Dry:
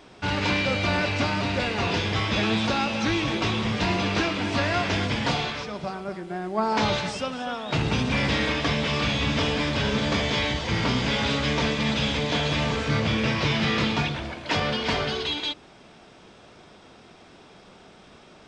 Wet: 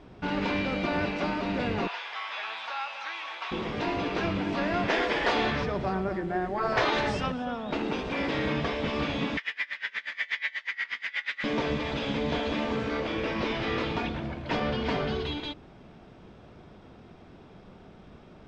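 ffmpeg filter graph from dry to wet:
ffmpeg -i in.wav -filter_complex "[0:a]asettb=1/sr,asplit=3[link_01][link_02][link_03];[link_01]atrim=end=1.874[link_04];[link_02]atrim=start=1.87:end=3.52,asetpts=PTS-STARTPTS,afade=type=in:duration=0.004:curve=qsin,afade=type=out:start_time=1.646:duration=0.004:curve=qsin,highpass=frequency=860:width=0.5412,highpass=frequency=860:width=1.3066,acrossover=split=4200[link_05][link_06];[link_06]acompressor=threshold=-42dB:ratio=4:attack=1:release=60[link_07];[link_05][link_07]amix=inputs=2:normalize=0[link_08];[link_03]atrim=start=3.516[link_09];[link_04][link_08]acrossfade=duration=0.004:curve1=hsin:curve2=qsin[link_10];[link_10][link_09]acrossfade=duration=0.004:curve1=qsin:curve2=hsin,asettb=1/sr,asplit=3[link_11][link_12][link_13];[link_11]atrim=end=4.884[link_14];[link_12]atrim=start=4.88:end=7.32,asetpts=PTS-STARTPTS,afade=type=in:duration=0.004:curve=qsin,afade=type=out:start_time=2.436:duration=0.004:curve=qsin,acontrast=57,equalizer=frequency=1800:width=7.9:gain=7.5[link_15];[link_13]atrim=start=7.316[link_16];[link_14][link_15]acrossfade=duration=0.004:curve1=hsin:curve2=qsin[link_17];[link_17][link_16]acrossfade=duration=0.004:curve1=qsin:curve2=hsin,asettb=1/sr,asplit=3[link_18][link_19][link_20];[link_18]atrim=end=9.374[link_21];[link_19]atrim=start=9.37:end=11.44,asetpts=PTS-STARTPTS,afade=type=in:duration=0.004:curve=qsin,afade=type=out:start_time=2.066:duration=0.004:curve=qsin,highpass=frequency=1900:width_type=q:width=8,aeval=exprs='val(0)*pow(10,-26*(0.5-0.5*cos(2*PI*8.3*n/s))/20)':channel_layout=same[link_22];[link_20]atrim=start=11.436[link_23];[link_21][link_22]acrossfade=duration=0.004:curve1=hsin:curve2=qsin[link_24];[link_24][link_23]acrossfade=duration=0.004:curve1=qsin:curve2=hsin,aemphasis=mode=reproduction:type=riaa,afftfilt=real='re*lt(hypot(re,im),0.708)':imag='im*lt(hypot(re,im),0.708)':win_size=1024:overlap=0.75,lowshelf=frequency=92:gain=-8,volume=-4dB" out.wav

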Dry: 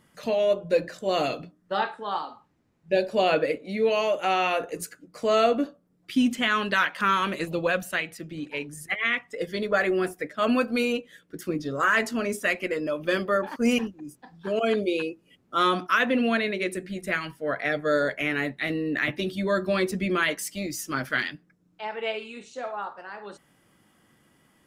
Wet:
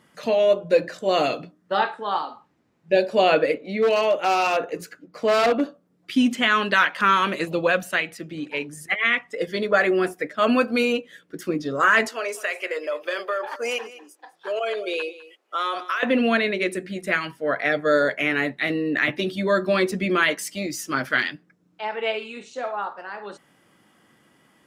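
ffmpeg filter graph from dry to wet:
ffmpeg -i in.wav -filter_complex "[0:a]asettb=1/sr,asplit=3[link_01][link_02][link_03];[link_01]atrim=end=3.544[link_04];[link_02]atrim=start=3.54:end=5.61,asetpts=PTS-STARTPTS,afade=type=in:duration=0.004:curve=qsin,afade=type=out:start_time=2.066:duration=0.004:curve=qsin,equalizer=frequency=9100:width_type=o:width=1.1:gain=-10,aeval=exprs='0.133*(abs(mod(val(0)/0.133+3,4)-2)-1)':channel_layout=same[link_05];[link_03]atrim=start=5.606[link_06];[link_04][link_05]acrossfade=duration=0.004:curve1=hsin:curve2=qsin[link_07];[link_07][link_06]acrossfade=duration=0.004:curve1=qsin:curve2=hsin,asettb=1/sr,asplit=3[link_08][link_09][link_10];[link_08]atrim=end=12.084[link_11];[link_09]atrim=start=12.08:end=16.03,asetpts=PTS-STARTPTS,afade=type=in:duration=0.004:curve=qsin,afade=type=out:start_time=3.946:duration=0.004:curve=qsin,highpass=frequency=460:width=0.5412,highpass=frequency=460:width=1.3066,acompressor=threshold=-26dB:ratio=6:attack=3.2:release=140:knee=1:detection=peak,aecho=1:1:203:0.141,atrim=end_sample=174195[link_12];[link_10]atrim=start=16.026[link_13];[link_11][link_12]acrossfade=duration=0.004:curve1=hsin:curve2=qsin[link_14];[link_14][link_13]acrossfade=duration=0.004:curve1=qsin:curve2=hsin,highpass=frequency=200:poles=1,highshelf=frequency=8300:gain=-7.5,volume=5dB" out.wav

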